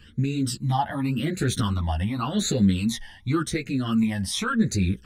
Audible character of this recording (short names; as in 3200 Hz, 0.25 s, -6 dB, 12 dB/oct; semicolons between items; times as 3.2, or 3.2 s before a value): phasing stages 12, 0.89 Hz, lowest notch 410–1000 Hz; tremolo saw up 0.58 Hz, depth 30%; a shimmering, thickened sound